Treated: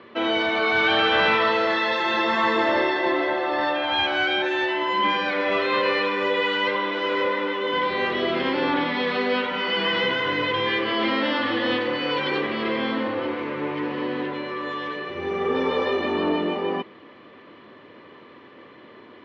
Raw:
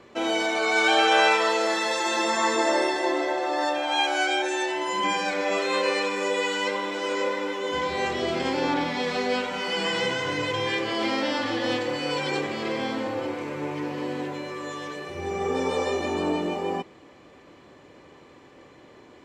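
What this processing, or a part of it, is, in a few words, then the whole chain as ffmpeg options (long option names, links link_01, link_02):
overdrive pedal into a guitar cabinet: -filter_complex "[0:a]asplit=2[link_01][link_02];[link_02]highpass=frequency=720:poles=1,volume=15dB,asoftclip=type=tanh:threshold=-7dB[link_03];[link_01][link_03]amix=inputs=2:normalize=0,lowpass=frequency=3400:poles=1,volume=-6dB,highpass=86,equalizer=frequency=98:width_type=q:width=4:gain=5,equalizer=frequency=220:width_type=q:width=4:gain=6,equalizer=frequency=550:width_type=q:width=4:gain=-3,equalizer=frequency=790:width_type=q:width=4:gain=-9,equalizer=frequency=1500:width_type=q:width=4:gain=-3,equalizer=frequency=2400:width_type=q:width=4:gain=-5,lowpass=frequency=3600:width=0.5412,lowpass=frequency=3600:width=1.3066"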